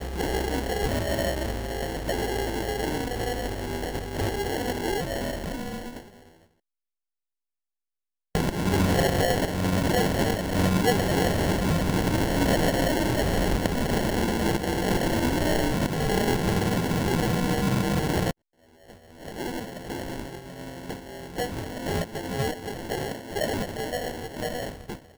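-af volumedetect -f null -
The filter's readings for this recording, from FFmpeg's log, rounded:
mean_volume: -26.7 dB
max_volume: -10.3 dB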